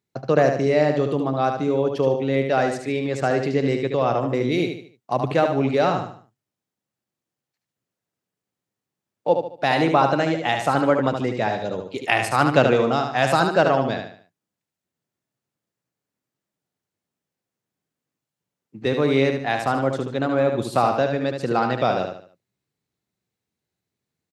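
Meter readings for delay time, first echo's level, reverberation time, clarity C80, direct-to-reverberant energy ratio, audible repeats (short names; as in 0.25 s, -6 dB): 74 ms, -6.0 dB, none, none, none, 4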